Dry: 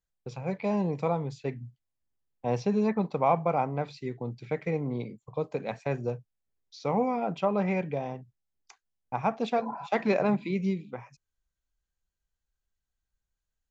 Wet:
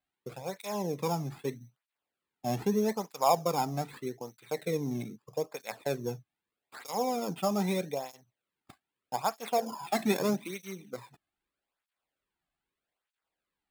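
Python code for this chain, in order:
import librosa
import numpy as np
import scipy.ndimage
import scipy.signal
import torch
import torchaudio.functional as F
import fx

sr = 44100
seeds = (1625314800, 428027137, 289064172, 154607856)

y = fx.high_shelf(x, sr, hz=5500.0, db=9.5)
y = fx.sample_hold(y, sr, seeds[0], rate_hz=6000.0, jitter_pct=0)
y = fx.flanger_cancel(y, sr, hz=0.8, depth_ms=2.2)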